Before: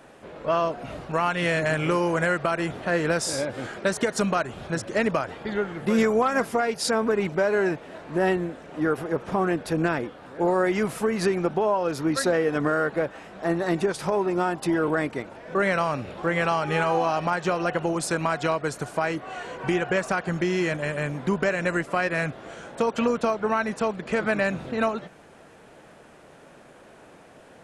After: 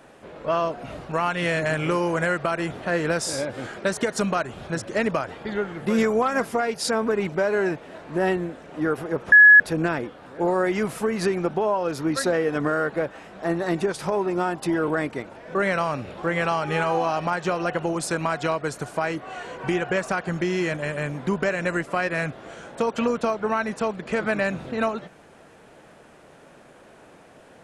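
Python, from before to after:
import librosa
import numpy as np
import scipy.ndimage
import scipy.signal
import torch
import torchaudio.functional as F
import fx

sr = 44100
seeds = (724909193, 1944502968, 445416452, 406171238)

y = fx.edit(x, sr, fx.bleep(start_s=9.32, length_s=0.28, hz=1690.0, db=-7.0), tone=tone)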